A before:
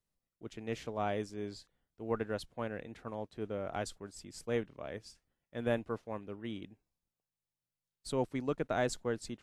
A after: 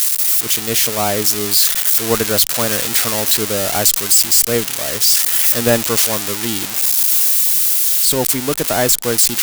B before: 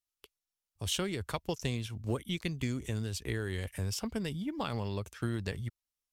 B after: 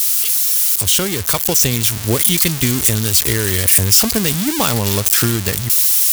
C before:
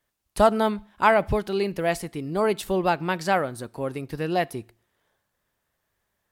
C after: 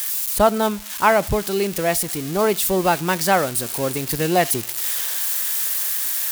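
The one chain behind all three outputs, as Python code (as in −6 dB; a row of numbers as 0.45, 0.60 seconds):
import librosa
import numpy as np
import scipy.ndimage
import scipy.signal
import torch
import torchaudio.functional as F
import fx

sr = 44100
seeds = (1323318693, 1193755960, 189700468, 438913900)

y = x + 0.5 * 10.0 ** (-20.5 / 20.0) * np.diff(np.sign(x), prepend=np.sign(x[:1]))
y = fx.rider(y, sr, range_db=10, speed_s=2.0)
y = librosa.util.normalize(y) * 10.0 ** (-1.5 / 20.0)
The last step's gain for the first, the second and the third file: +15.0, +14.0, +3.5 decibels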